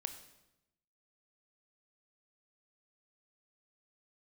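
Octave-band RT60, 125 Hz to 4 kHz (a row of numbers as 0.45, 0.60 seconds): 1.1, 1.1, 0.95, 0.90, 0.80, 0.80 seconds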